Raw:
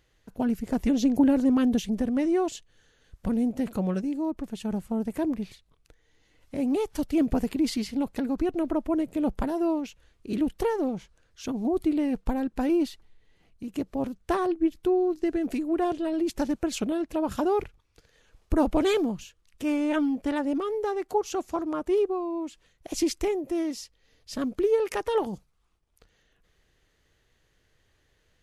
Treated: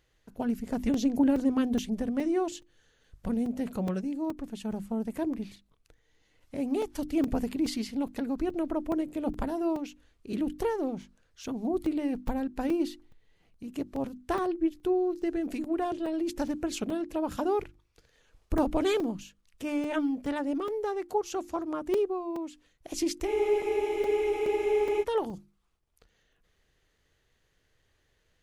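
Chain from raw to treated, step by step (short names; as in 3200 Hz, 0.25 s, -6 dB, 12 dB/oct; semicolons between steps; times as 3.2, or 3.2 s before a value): notches 50/100/150/200/250/300/350 Hz; spectral freeze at 23.3, 1.72 s; crackling interface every 0.42 s, samples 128, zero, from 0.94; gain -3 dB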